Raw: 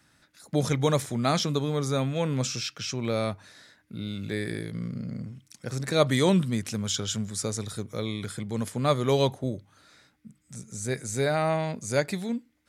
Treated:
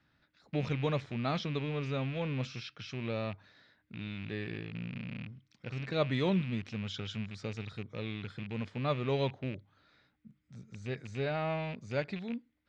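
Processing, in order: rattling part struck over -34 dBFS, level -26 dBFS; LPF 4200 Hz 24 dB/oct; low shelf 140 Hz +4.5 dB; gain -9 dB

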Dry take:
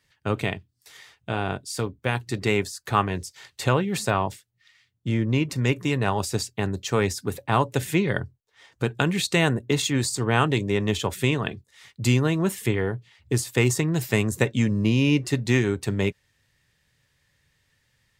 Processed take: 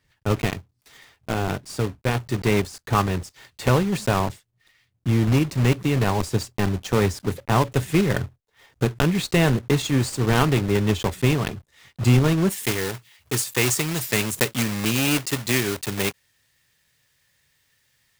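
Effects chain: block floating point 3-bit; tilt -1.5 dB/oct, from 12.5 s +1.5 dB/oct

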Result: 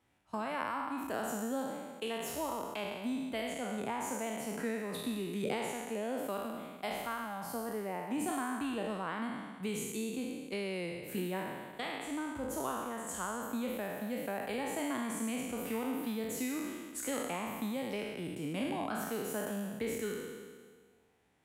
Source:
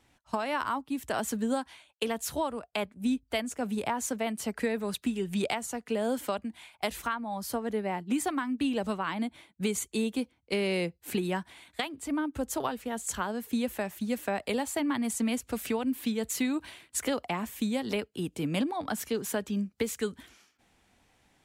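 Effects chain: spectral trails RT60 1.67 s; HPF 65 Hz; bell 5300 Hz -6.5 dB 1.6 oct; gain -9 dB

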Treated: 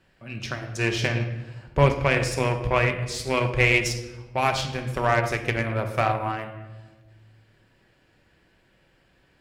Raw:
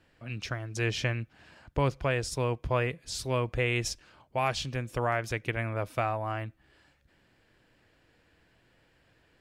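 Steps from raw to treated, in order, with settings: shoebox room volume 770 m³, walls mixed, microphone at 1.1 m; added harmonics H 3 -25 dB, 7 -27 dB, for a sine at -12.5 dBFS; 1.86–3.87 bell 2200 Hz +6.5 dB 0.41 oct; gain +7 dB

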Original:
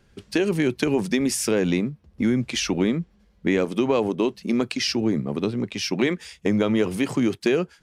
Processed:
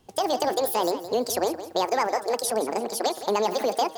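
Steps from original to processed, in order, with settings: wide varispeed 1.97×; de-hum 158.2 Hz, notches 11; lo-fi delay 0.168 s, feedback 35%, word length 8-bit, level -12.5 dB; gain -2.5 dB

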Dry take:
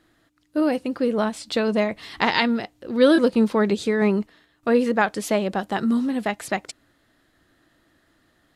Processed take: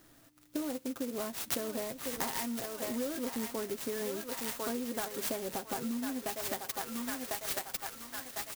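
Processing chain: comb 7.5 ms, depth 59%; on a send: thinning echo 1.05 s, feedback 51%, high-pass 1100 Hz, level -4 dB; on the sum: soft clip -6 dBFS, distortion -21 dB; compressor 10:1, threshold -34 dBFS, peak gain reduction 23 dB; high shelf 4700 Hz +10 dB; clock jitter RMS 0.11 ms

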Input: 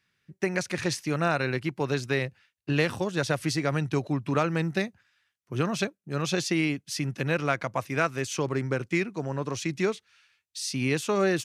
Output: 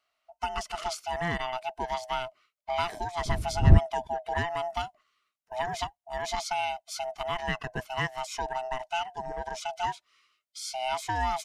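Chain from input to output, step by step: band-swap scrambler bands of 500 Hz; 3.25–3.78 wind noise 96 Hz -22 dBFS; gain -4.5 dB

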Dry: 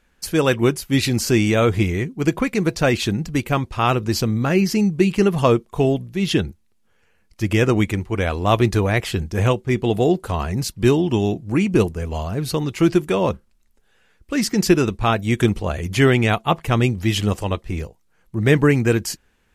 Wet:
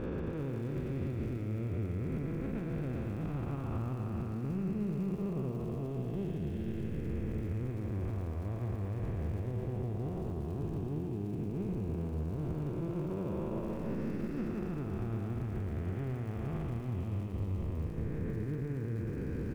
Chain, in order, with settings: time blur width 0.885 s; LPF 1600 Hz 12 dB/oct; low shelf 140 Hz +11.5 dB; compressor, threshold -30 dBFS, peak gain reduction 15.5 dB; limiter -29.5 dBFS, peak gain reduction 8.5 dB; crackle 85/s -49 dBFS; on a send: echo 0.114 s -7.5 dB; on the sum: lo-fi delay 0.366 s, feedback 35%, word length 9-bit, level -14.5 dB

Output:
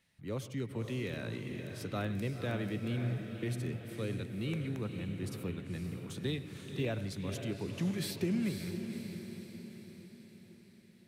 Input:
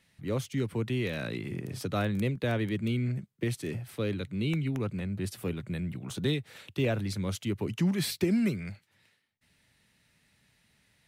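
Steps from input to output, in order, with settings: diffused feedback echo 0.521 s, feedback 54%, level -7 dB; on a send at -15 dB: reverb RT60 0.45 s, pre-delay 93 ms; on the sum: gain -7 dB

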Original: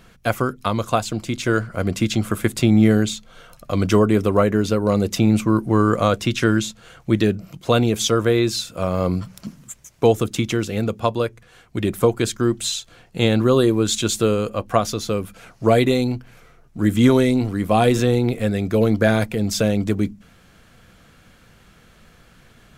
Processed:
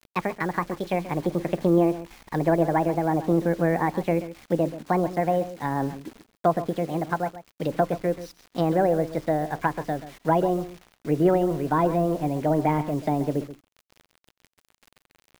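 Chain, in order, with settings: speed glide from 161% -> 135%; LPF 3700 Hz 12 dB/oct; treble ducked by the level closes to 1400 Hz, closed at -17 dBFS; bit-crush 7-bit; echo 0.132 s -14 dB; gain -5 dB

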